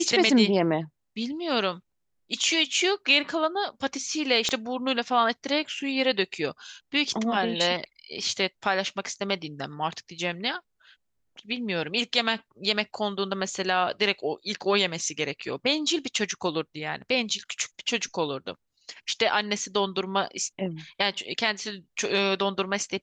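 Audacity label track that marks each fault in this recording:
4.490000	4.490000	pop -13 dBFS

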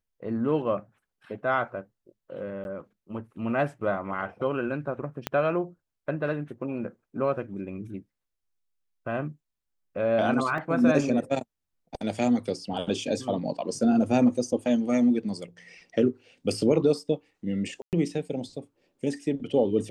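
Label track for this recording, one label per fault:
2.640000	2.650000	gap 11 ms
5.270000	5.270000	pop -12 dBFS
10.580000	10.580000	gap 2.1 ms
17.820000	17.930000	gap 0.108 s

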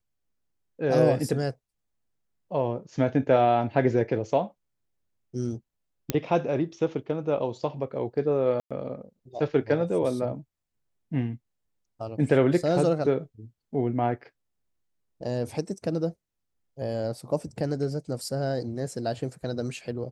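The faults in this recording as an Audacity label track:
6.100000	6.100000	pop -9 dBFS
8.600000	8.710000	gap 0.106 s

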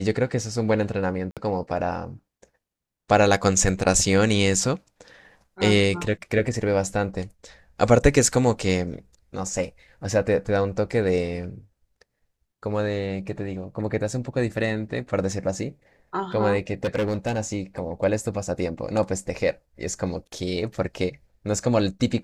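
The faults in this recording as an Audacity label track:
1.310000	1.370000	gap 57 ms
16.840000	17.390000	clipped -19.5 dBFS

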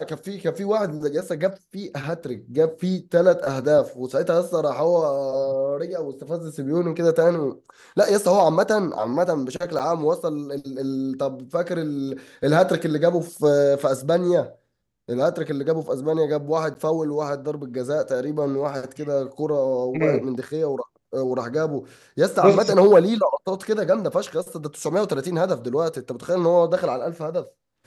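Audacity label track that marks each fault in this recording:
9.790000	9.800000	gap 7.3 ms
16.740000	16.750000	gap 9.5 ms

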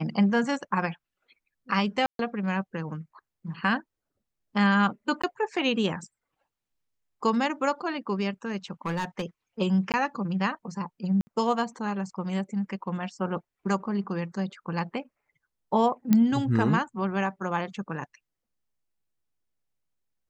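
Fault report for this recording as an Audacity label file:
2.060000	2.190000	gap 0.132 s
5.220000	5.240000	gap 15 ms
8.860000	9.230000	clipped -24 dBFS
9.920000	9.940000	gap 18 ms
11.210000	11.270000	gap 60 ms
16.130000	16.130000	pop -9 dBFS

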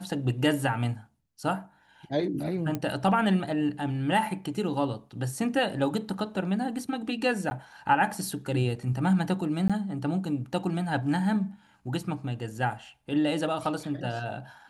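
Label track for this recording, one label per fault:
2.750000	2.750000	pop -17 dBFS
7.500000	7.510000	gap 10 ms
9.680000	9.700000	gap 16 ms

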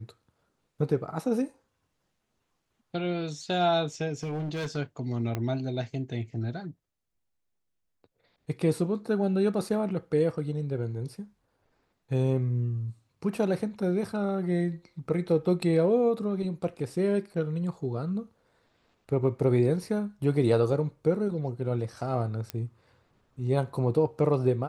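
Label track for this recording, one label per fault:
4.230000	4.770000	clipped -29 dBFS
5.350000	5.350000	pop -17 dBFS
22.500000	22.500000	pop -17 dBFS

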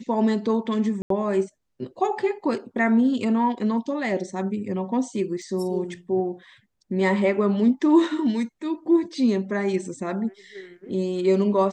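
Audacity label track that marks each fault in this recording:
1.020000	1.100000	gap 83 ms
5.420000	5.420000	gap 2.4 ms

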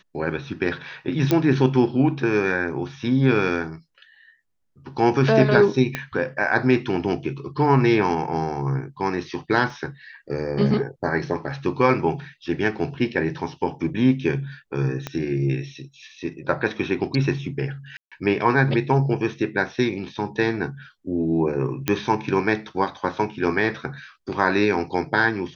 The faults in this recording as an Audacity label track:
1.310000	1.310000	pop -6 dBFS
5.950000	5.950000	pop -10 dBFS
9.700000	9.700000	gap 2.2 ms
15.070000	15.070000	pop -13 dBFS
17.970000	18.120000	gap 0.146 s
21.880000	21.880000	pop -6 dBFS

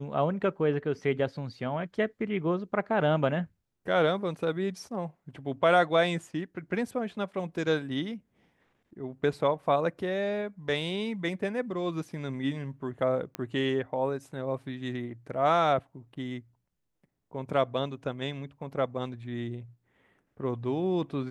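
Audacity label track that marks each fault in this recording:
13.350000	13.350000	pop -18 dBFS

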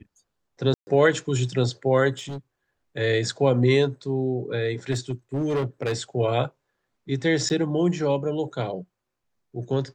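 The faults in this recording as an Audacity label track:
0.740000	0.870000	gap 0.13 s
2.170000	2.380000	clipped -29 dBFS
4.910000	5.940000	clipped -20.5 dBFS
7.490000	7.500000	gap 9.2 ms

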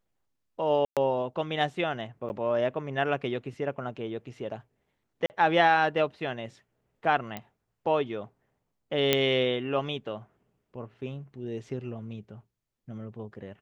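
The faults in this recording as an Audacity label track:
0.850000	0.970000	gap 0.117 s
2.290000	2.300000	gap 9.8 ms
5.260000	5.300000	gap 39 ms
7.370000	7.370000	pop -20 dBFS
9.130000	9.130000	pop -7 dBFS

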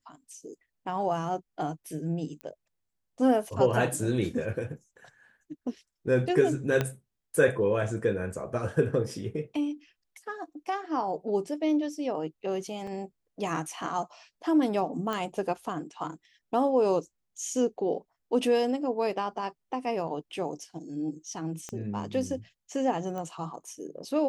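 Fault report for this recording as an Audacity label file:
2.410000	2.410000	pop -26 dBFS
6.810000	6.810000	pop -13 dBFS
12.870000	12.870000	gap 3.7 ms
15.130000	15.130000	pop -18 dBFS
21.690000	21.690000	pop -23 dBFS
23.180000	23.180000	pop -25 dBFS

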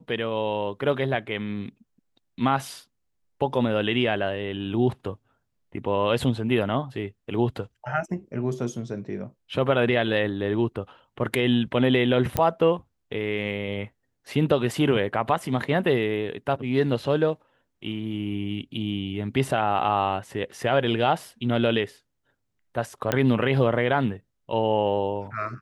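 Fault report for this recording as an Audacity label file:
12.370000	12.370000	pop -8 dBFS
23.120000	23.120000	pop -8 dBFS

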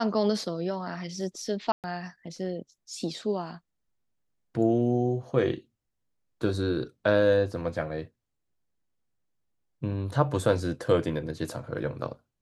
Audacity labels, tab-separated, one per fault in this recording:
1.720000	1.840000	gap 0.118 s

